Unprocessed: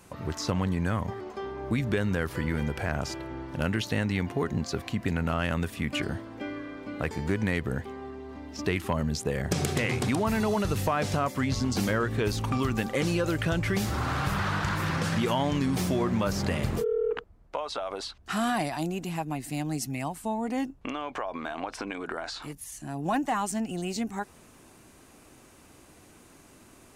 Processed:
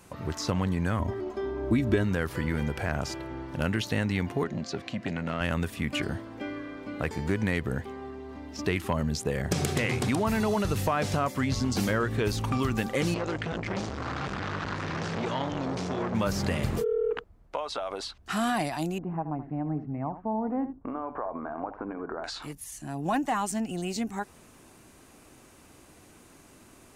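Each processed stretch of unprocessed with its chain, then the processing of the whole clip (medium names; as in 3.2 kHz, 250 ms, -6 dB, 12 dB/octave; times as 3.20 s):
0.99–2.04 s: tilt shelf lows +4 dB, about 770 Hz + comb 3.1 ms, depth 62%
4.44–5.41 s: band-pass 140–6000 Hz + peaking EQ 930 Hz -8 dB 0.51 oct + transformer saturation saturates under 490 Hz
13.14–16.15 s: low-pass 6.8 kHz 24 dB/octave + transformer saturation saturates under 950 Hz
18.98–22.24 s: low-pass 1.3 kHz 24 dB/octave + delay 78 ms -12 dB
whole clip: none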